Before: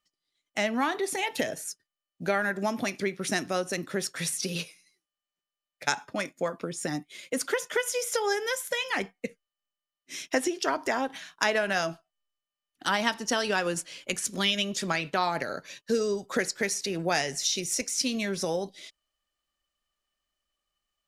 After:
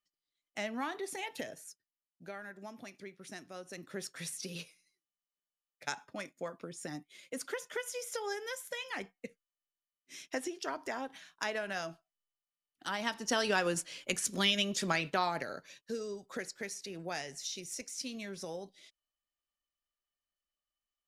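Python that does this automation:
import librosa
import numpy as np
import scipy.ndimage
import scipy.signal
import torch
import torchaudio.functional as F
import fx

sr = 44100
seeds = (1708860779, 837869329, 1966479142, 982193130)

y = fx.gain(x, sr, db=fx.line((1.19, -10.0), (2.33, -18.5), (3.52, -18.5), (3.99, -10.5), (12.93, -10.5), (13.4, -3.0), (15.05, -3.0), (15.97, -12.5)))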